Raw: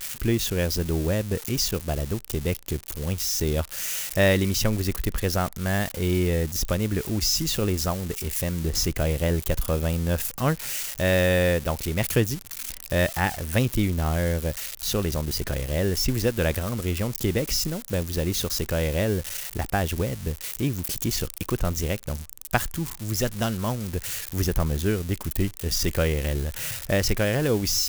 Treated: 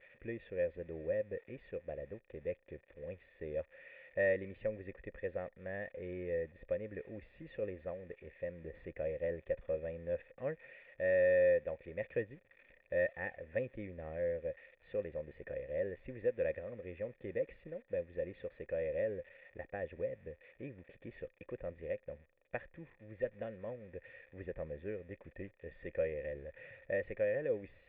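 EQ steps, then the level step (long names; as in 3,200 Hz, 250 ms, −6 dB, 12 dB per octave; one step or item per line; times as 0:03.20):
formant resonators in series e
low-shelf EQ 76 Hz −6 dB
−3.5 dB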